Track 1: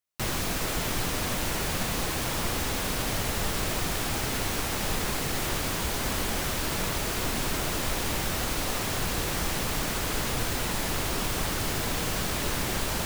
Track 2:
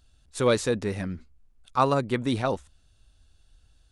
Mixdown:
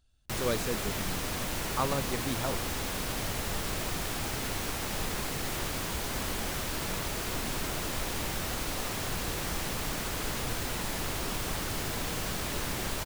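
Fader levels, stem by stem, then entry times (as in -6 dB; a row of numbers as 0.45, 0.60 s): -4.5, -9.0 dB; 0.10, 0.00 s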